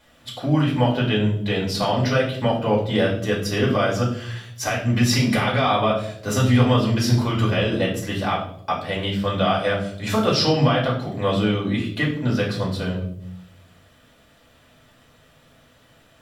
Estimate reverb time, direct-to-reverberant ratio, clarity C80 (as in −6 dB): 0.70 s, −4.5 dB, 10.5 dB